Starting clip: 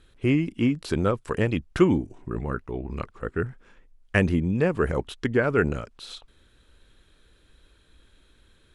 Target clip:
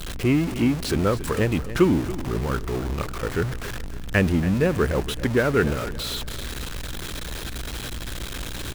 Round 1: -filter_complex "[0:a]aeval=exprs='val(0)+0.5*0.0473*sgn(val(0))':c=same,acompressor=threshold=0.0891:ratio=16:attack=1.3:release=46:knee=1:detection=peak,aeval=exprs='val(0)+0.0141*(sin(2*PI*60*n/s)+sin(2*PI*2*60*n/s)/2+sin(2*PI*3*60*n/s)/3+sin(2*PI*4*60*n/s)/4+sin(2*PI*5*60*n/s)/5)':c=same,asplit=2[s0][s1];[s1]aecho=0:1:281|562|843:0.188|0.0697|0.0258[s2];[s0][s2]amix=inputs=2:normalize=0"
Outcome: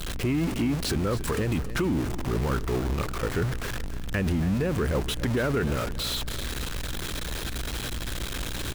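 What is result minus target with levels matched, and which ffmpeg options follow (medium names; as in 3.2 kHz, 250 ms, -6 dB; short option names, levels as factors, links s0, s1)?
compression: peak gain reduction +12.5 dB
-filter_complex "[0:a]aeval=exprs='val(0)+0.5*0.0473*sgn(val(0))':c=same,aeval=exprs='val(0)+0.0141*(sin(2*PI*60*n/s)+sin(2*PI*2*60*n/s)/2+sin(2*PI*3*60*n/s)/3+sin(2*PI*4*60*n/s)/4+sin(2*PI*5*60*n/s)/5)':c=same,asplit=2[s0][s1];[s1]aecho=0:1:281|562|843:0.188|0.0697|0.0258[s2];[s0][s2]amix=inputs=2:normalize=0"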